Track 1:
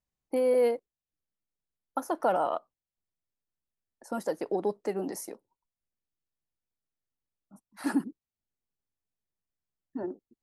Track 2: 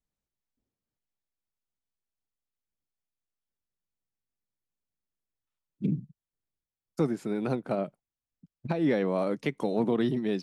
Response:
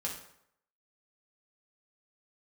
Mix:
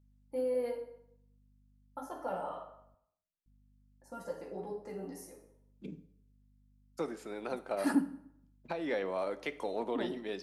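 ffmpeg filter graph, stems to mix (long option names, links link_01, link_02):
-filter_complex "[0:a]bandreject=frequency=157.6:width_type=h:width=4,bandreject=frequency=315.2:width_type=h:width=4,bandreject=frequency=472.8:width_type=h:width=4,bandreject=frequency=630.4:width_type=h:width=4,bandreject=frequency=788:width_type=h:width=4,bandreject=frequency=945.6:width_type=h:width=4,bandreject=frequency=1103.2:width_type=h:width=4,bandreject=frequency=1260.8:width_type=h:width=4,bandreject=frequency=1418.4:width_type=h:width=4,volume=-3dB,asplit=2[link_01][link_02];[link_02]volume=-9.5dB[link_03];[1:a]highpass=470,aeval=exprs='val(0)+0.000891*(sin(2*PI*50*n/s)+sin(2*PI*2*50*n/s)/2+sin(2*PI*3*50*n/s)/3+sin(2*PI*4*50*n/s)/4+sin(2*PI*5*50*n/s)/5)':channel_layout=same,volume=-5.5dB,asplit=3[link_04][link_05][link_06];[link_04]atrim=end=2.95,asetpts=PTS-STARTPTS,afade=type=out:start_time=2.946:duration=0.004:curve=hsin[link_07];[link_05]atrim=start=2.95:end=3.46,asetpts=PTS-STARTPTS,volume=0[link_08];[link_06]atrim=start=3.46,asetpts=PTS-STARTPTS,afade=type=in:duration=0.004:curve=hsin[link_09];[link_07][link_08][link_09]concat=n=3:v=0:a=1,asplit=3[link_10][link_11][link_12];[link_11]volume=-9.5dB[link_13];[link_12]apad=whole_len=459853[link_14];[link_01][link_14]sidechaingate=range=-33dB:threshold=-56dB:ratio=16:detection=peak[link_15];[2:a]atrim=start_sample=2205[link_16];[link_03][link_13]amix=inputs=2:normalize=0[link_17];[link_17][link_16]afir=irnorm=-1:irlink=0[link_18];[link_15][link_10][link_18]amix=inputs=3:normalize=0"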